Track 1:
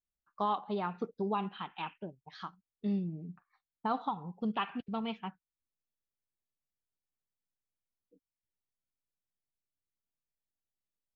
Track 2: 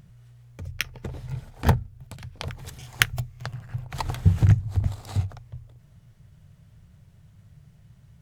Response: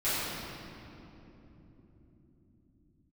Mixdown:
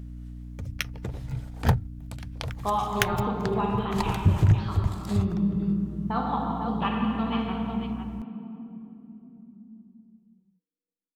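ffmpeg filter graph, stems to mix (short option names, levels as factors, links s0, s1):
-filter_complex "[0:a]agate=range=0.0355:threshold=0.00141:ratio=16:detection=peak,adelay=2250,volume=1,asplit=3[s0][s1][s2];[s1]volume=0.501[s3];[s2]volume=0.631[s4];[1:a]aeval=exprs='val(0)+0.0141*(sin(2*PI*60*n/s)+sin(2*PI*2*60*n/s)/2+sin(2*PI*3*60*n/s)/3+sin(2*PI*4*60*n/s)/4+sin(2*PI*5*60*n/s)/5)':c=same,volume=0.944[s5];[2:a]atrim=start_sample=2205[s6];[s3][s6]afir=irnorm=-1:irlink=0[s7];[s4]aecho=0:1:504:1[s8];[s0][s5][s7][s8]amix=inputs=4:normalize=0,asoftclip=type=tanh:threshold=0.335"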